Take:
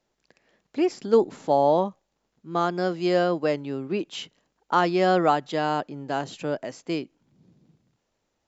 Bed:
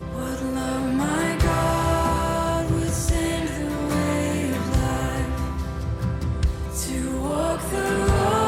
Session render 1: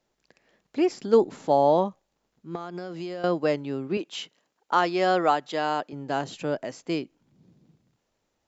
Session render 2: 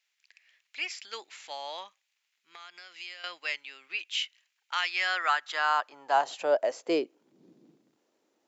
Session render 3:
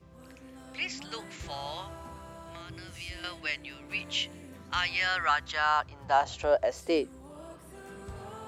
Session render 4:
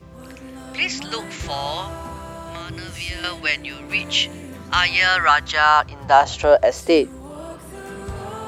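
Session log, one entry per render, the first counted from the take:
2.55–3.24 compressor 16:1, threshold -30 dBFS; 3.97–5.93 HPF 380 Hz 6 dB/oct
high-pass sweep 2300 Hz -> 310 Hz, 4.86–7.47
add bed -23.5 dB
gain +12 dB; limiter -2 dBFS, peak gain reduction 1 dB

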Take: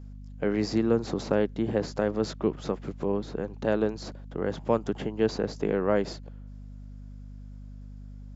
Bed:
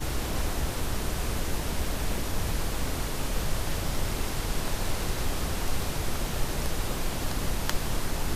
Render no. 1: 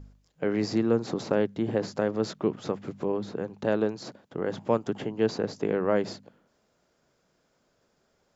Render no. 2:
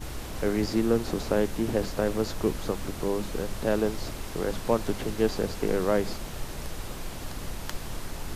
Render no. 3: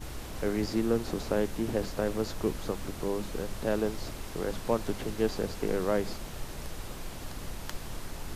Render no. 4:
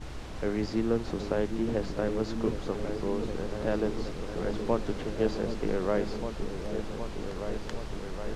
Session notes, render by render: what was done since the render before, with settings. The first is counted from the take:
de-hum 50 Hz, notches 5
add bed -6.5 dB
gain -3.5 dB
air absorption 80 m; repeats that get brighter 0.766 s, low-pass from 400 Hz, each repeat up 2 oct, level -6 dB

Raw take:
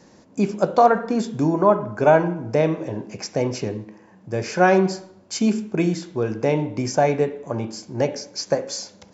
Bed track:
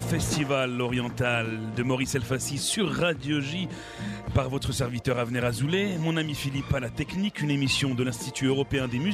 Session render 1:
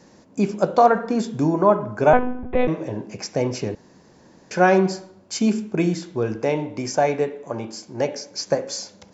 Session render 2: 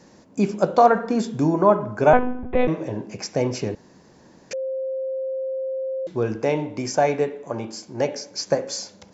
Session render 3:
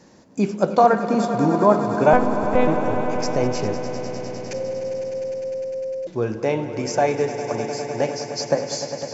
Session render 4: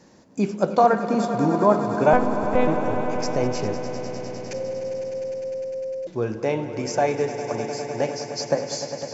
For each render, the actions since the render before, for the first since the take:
2.13–2.68 monotone LPC vocoder at 8 kHz 250 Hz; 3.75–4.51 room tone; 6.36–8.31 low shelf 190 Hz -9 dB
4.53–6.07 bleep 528 Hz -24 dBFS
swelling echo 0.101 s, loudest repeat 5, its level -13.5 dB
gain -2 dB

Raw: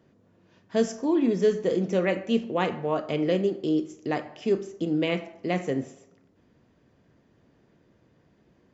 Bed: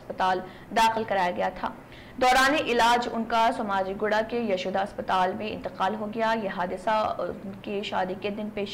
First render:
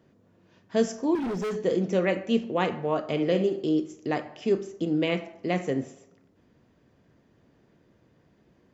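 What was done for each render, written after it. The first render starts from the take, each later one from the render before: 1.15–1.56 overloaded stage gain 27.5 dB; 3.03–3.68 flutter echo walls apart 10.9 m, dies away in 0.34 s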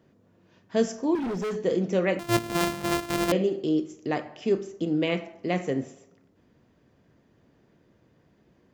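2.19–3.32 sample sorter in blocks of 128 samples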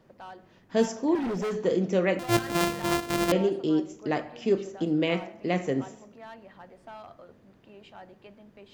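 add bed -20 dB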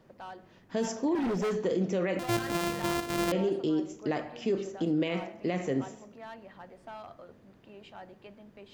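limiter -20.5 dBFS, peak gain reduction 9.5 dB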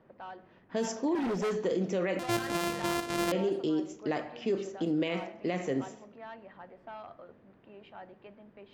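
low-pass opened by the level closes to 2100 Hz, open at -26.5 dBFS; low shelf 160 Hz -6.5 dB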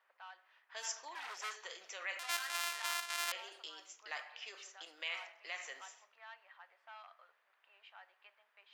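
Bessel high-pass 1500 Hz, order 4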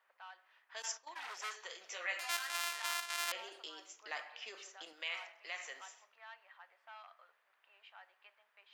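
0.82–1.35 gate -50 dBFS, range -14 dB; 1.87–2.29 doubler 17 ms -2 dB; 3.3–4.93 low shelf 340 Hz +12 dB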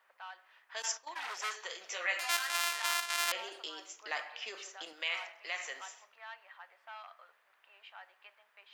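gain +5.5 dB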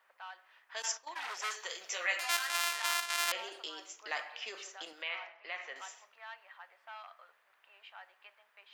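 1.5–2.16 high shelf 6500 Hz +8 dB; 5.02–5.76 air absorption 260 m

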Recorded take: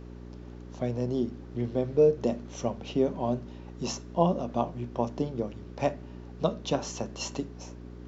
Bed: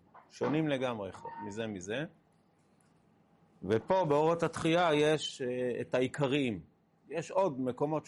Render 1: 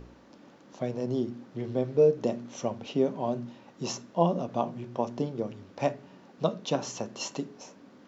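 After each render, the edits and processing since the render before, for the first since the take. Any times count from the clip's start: de-hum 60 Hz, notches 7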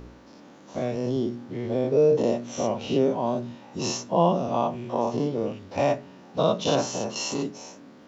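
spectral dilation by 0.12 s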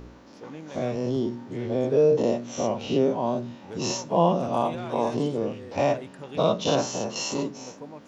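add bed -10 dB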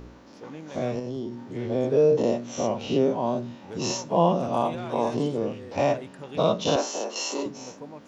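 0.99–1.56 compressor 2:1, threshold -33 dBFS; 6.76–7.46 HPF 290 Hz 24 dB/oct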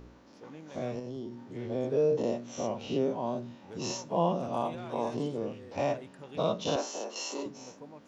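gain -7 dB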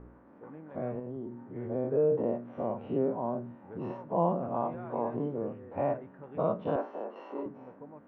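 LPF 1700 Hz 24 dB/oct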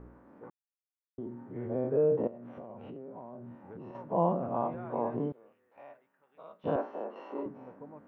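0.5–1.18 mute; 2.27–3.95 compressor 10:1, threshold -41 dBFS; 5.32–6.64 differentiator

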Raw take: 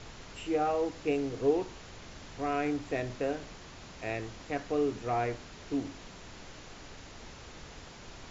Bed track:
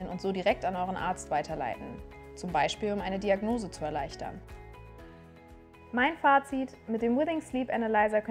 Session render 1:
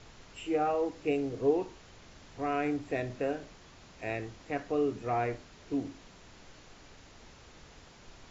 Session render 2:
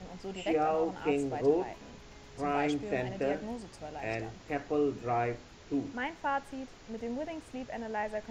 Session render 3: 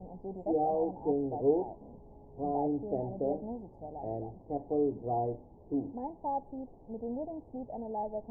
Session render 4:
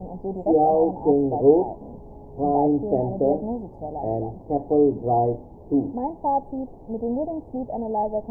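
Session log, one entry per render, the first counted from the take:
noise print and reduce 6 dB
add bed track -9.5 dB
elliptic low-pass 860 Hz, stop band 40 dB
gain +11.5 dB

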